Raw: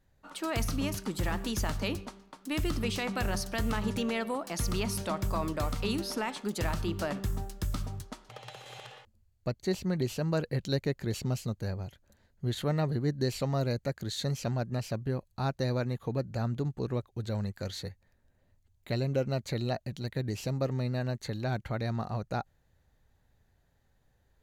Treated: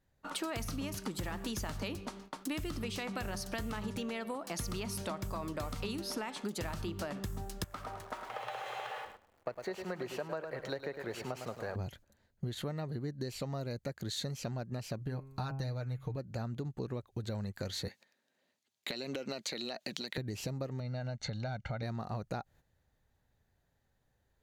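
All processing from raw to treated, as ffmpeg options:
ffmpeg -i in.wav -filter_complex "[0:a]asettb=1/sr,asplit=3[link_01][link_02][link_03];[link_01]atrim=end=7.644[link_04];[link_02]atrim=start=7.64:end=11.76,asetpts=PTS-STARTPTS,afade=type=in:duration=0.004:curve=qsin,afade=type=out:start_time=4.116:duration=0.004:curve=qsin,aeval=exprs='val(0)+0.5*0.00562*sgn(val(0))':channel_layout=same,acrossover=split=460 2200:gain=0.1 1 0.158[link_05][link_06][link_07];[link_05][link_06][link_07]amix=inputs=3:normalize=0,aecho=1:1:105|210|315|420:0.335|0.137|0.0563|0.0231,atrim=end_sample=181692[link_08];[link_03]atrim=start=11.756[link_09];[link_04][link_08]acrossfade=duration=0.004:curve1=hsin:curve2=qsin[link_10];[link_10][link_09]acrossfade=duration=0.004:curve1=qsin:curve2=hsin,asettb=1/sr,asplit=3[link_11][link_12][link_13];[link_11]atrim=end=14.984[link_14];[link_12]atrim=start=14.98:end=16.16,asetpts=PTS-STARTPTS,afade=type=in:duration=0.004:curve=qsin,afade=type=out:start_time=1.176:duration=0.004:curve=qsin,bandreject=frequency=134.5:width_type=h:width=4,bandreject=frequency=269:width_type=h:width=4,bandreject=frequency=403.5:width_type=h:width=4,bandreject=frequency=538:width_type=h:width=4,bandreject=frequency=672.5:width_type=h:width=4,bandreject=frequency=807:width_type=h:width=4,bandreject=frequency=941.5:width_type=h:width=4,bandreject=frequency=1076:width_type=h:width=4,bandreject=frequency=1210.5:width_type=h:width=4,bandreject=frequency=1345:width_type=h:width=4,bandreject=frequency=1479.5:width_type=h:width=4,bandreject=frequency=1614:width_type=h:width=4,bandreject=frequency=1748.5:width_type=h:width=4,bandreject=frequency=1883:width_type=h:width=4,bandreject=frequency=2017.5:width_type=h:width=4,bandreject=frequency=2152:width_type=h:width=4,bandreject=frequency=2286.5:width_type=h:width=4,bandreject=frequency=2421:width_type=h:width=4,bandreject=frequency=2555.5:width_type=h:width=4,bandreject=frequency=2690:width_type=h:width=4,asubboost=boost=11.5:cutoff=120,aecho=1:1:6.6:0.54,atrim=end_sample=52038[link_15];[link_13]atrim=start=16.156[link_16];[link_14][link_15]acrossfade=duration=0.004:curve1=hsin:curve2=qsin[link_17];[link_17][link_16]acrossfade=duration=0.004:curve1=qsin:curve2=hsin,asettb=1/sr,asplit=3[link_18][link_19][link_20];[link_18]atrim=end=17.884[link_21];[link_19]atrim=start=17.88:end=20.18,asetpts=PTS-STARTPTS,afade=type=in:duration=0.004:curve=qsin,afade=type=out:start_time=2.296:duration=0.004:curve=qsin,highpass=frequency=210:width=0.5412,highpass=frequency=210:width=1.3066,equalizer=frequency=3900:width=0.54:gain=10.5,acompressor=threshold=-37dB:ratio=6:attack=3.2:release=140:knee=1:detection=peak[link_22];[link_20]atrim=start=20.176[link_23];[link_21][link_22]acrossfade=duration=0.004:curve1=hsin:curve2=qsin[link_24];[link_24][link_23]acrossfade=duration=0.004:curve1=qsin:curve2=hsin,asettb=1/sr,asplit=3[link_25][link_26][link_27];[link_25]atrim=end=20.804[link_28];[link_26]atrim=start=20.8:end=21.83,asetpts=PTS-STARTPTS,afade=type=in:duration=0.004:curve=qsin,afade=type=out:start_time=1.026:duration=0.004:curve=qsin,aecho=1:1:1.4:0.66,atrim=end_sample=45423,acompressor=threshold=-37dB:ratio=1.5:attack=3.2:release=140:knee=1:detection=peak,lowpass=frequency=6600:width=0.5412,lowpass=frequency=6600:width=1.3066[link_29];[link_27]atrim=start=21.826[link_30];[link_28][link_29]acrossfade=duration=0.004:curve1=hsin:curve2=qsin[link_31];[link_31][link_30]acrossfade=duration=0.004:curve1=qsin:curve2=hsin,agate=range=-11dB:threshold=-56dB:ratio=16:detection=peak,lowshelf=frequency=61:gain=-6,acompressor=threshold=-41dB:ratio=16,volume=6.5dB" out.wav

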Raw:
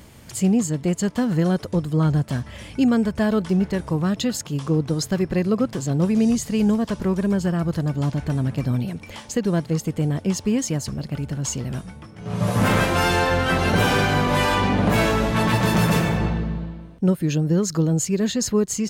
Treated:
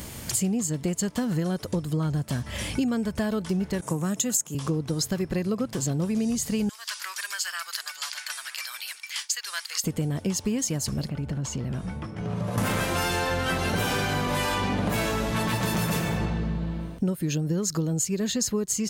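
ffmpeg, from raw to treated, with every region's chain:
ffmpeg -i in.wav -filter_complex "[0:a]asettb=1/sr,asplit=3[link_01][link_02][link_03];[link_01]atrim=end=3.814[link_04];[link_02]atrim=start=3.81:end=4.55,asetpts=PTS-STARTPTS,afade=type=in:duration=0.004:curve=qsin,afade=type=out:start_time=0.736:duration=0.004:curve=qsin,agate=range=-33dB:threshold=-37dB:ratio=3:release=100:detection=peak,highpass=frequency=130:width=0.5412,highpass=frequency=130:width=1.3066,highshelf=frequency=5700:width_type=q:width=3:gain=6.5[link_05];[link_03]atrim=start=4.546[link_06];[link_04][link_05]acrossfade=duration=0.004:curve1=hsin:curve2=qsin[link_07];[link_07][link_06]acrossfade=duration=0.004:curve1=qsin:curve2=hsin,asettb=1/sr,asplit=3[link_08][link_09][link_10];[link_08]atrim=end=6.694[link_11];[link_09]atrim=start=6.69:end=9.84,asetpts=PTS-STARTPTS,afade=type=in:duration=0.004:curve=qsin,afade=type=out:start_time=3.146:duration=0.004:curve=qsin,agate=range=-33dB:threshold=-36dB:ratio=3:release=100:detection=peak,highpass=frequency=1400:width=0.5412,highpass=frequency=1400:width=1.3066,equalizer=frequency=4700:width_type=o:width=0.27:gain=5.5[link_12];[link_10]atrim=start=9.836[link_13];[link_11][link_12]acrossfade=duration=0.004:curve1=hsin:curve2=qsin[link_14];[link_14][link_13]acrossfade=duration=0.004:curve1=qsin:curve2=hsin,asettb=1/sr,asplit=3[link_15][link_16][link_17];[link_15]atrim=end=11.094[link_18];[link_16]atrim=start=11.09:end=12.58,asetpts=PTS-STARTPTS,afade=type=in:duration=0.004:curve=qsin,afade=type=out:start_time=1.486:duration=0.004:curve=qsin,acompressor=threshold=-33dB:ratio=3:attack=3.2:release=140:knee=1:detection=peak,lowpass=frequency=1800:poles=1[link_19];[link_17]atrim=start=12.576[link_20];[link_18][link_19]acrossfade=duration=0.004:curve1=hsin:curve2=qsin[link_21];[link_21][link_20]acrossfade=duration=0.004:curve1=qsin:curve2=hsin,highshelf=frequency=5000:gain=9,acompressor=threshold=-31dB:ratio=5,volume=6dB" out.wav

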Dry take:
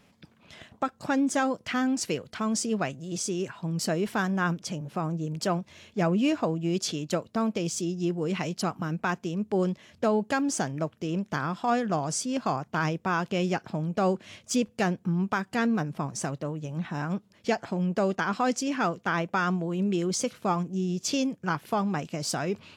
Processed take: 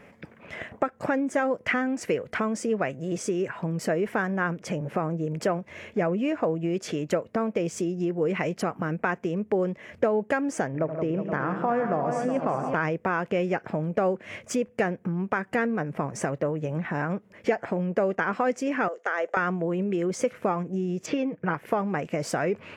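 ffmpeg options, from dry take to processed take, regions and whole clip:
ffmpeg -i in.wav -filter_complex "[0:a]asettb=1/sr,asplit=3[link_01][link_02][link_03];[link_01]atrim=end=10.674[link_04];[link_02]atrim=start=10.67:end=12.74,asetpts=PTS-STARTPTS,afade=type=in:duration=0.004:curve=qsin,afade=type=out:start_time=2.066:duration=0.004:curve=qsin,highshelf=frequency=3000:gain=-12,aecho=1:1:75|80|131|170|367|472:0.237|0.133|0.15|0.266|0.316|0.266,atrim=end_sample=91287[link_05];[link_03]atrim=start=12.736[link_06];[link_04][link_05]acrossfade=duration=0.004:curve1=hsin:curve2=qsin[link_07];[link_07][link_06]acrossfade=duration=0.004:curve1=qsin:curve2=hsin,asettb=1/sr,asplit=3[link_08][link_09][link_10];[link_08]atrim=end=18.884[link_11];[link_09]atrim=start=18.88:end=19.37,asetpts=PTS-STARTPTS,afade=type=in:duration=0.004:curve=qsin,afade=type=out:start_time=0.486:duration=0.004:curve=qsin,highpass=frequency=440:width=0.5412,highpass=frequency=440:width=1.3066,equalizer=frequency=1000:width_type=q:width=4:gain=-7,equalizer=frequency=2400:width_type=q:width=4:gain=-8,equalizer=frequency=6600:width_type=q:width=4:gain=7,lowpass=frequency=10000:width=0.5412,lowpass=frequency=10000:width=1.3066,acompressor=threshold=-33dB:ratio=2:attack=3.2:release=140:knee=1:detection=peak[link_12];[link_10]atrim=start=19.366[link_13];[link_11][link_12]acrossfade=duration=0.004:curve1=hsin:curve2=qsin[link_14];[link_14][link_13]acrossfade=duration=0.004:curve1=qsin:curve2=hsin,asettb=1/sr,asplit=3[link_15][link_16][link_17];[link_15]atrim=end=21.064[link_18];[link_16]atrim=start=21.06:end=21.54,asetpts=PTS-STARTPTS,afade=type=in:duration=0.004:curve=qsin,afade=type=out:start_time=0.476:duration=0.004:curve=qsin,lowpass=3100,aecho=1:1:6.4:0.49,atrim=end_sample=21168[link_19];[link_17]atrim=start=21.536[link_20];[link_18][link_19]acrossfade=duration=0.004:curve1=hsin:curve2=qsin[link_21];[link_21][link_20]acrossfade=duration=0.004:curve1=qsin:curve2=hsin,highshelf=frequency=4100:gain=-6.5,acompressor=threshold=-35dB:ratio=4,equalizer=frequency=500:width_type=o:width=1:gain=9,equalizer=frequency=2000:width_type=o:width=1:gain=11,equalizer=frequency=4000:width_type=o:width=1:gain=-10,volume=6dB" out.wav

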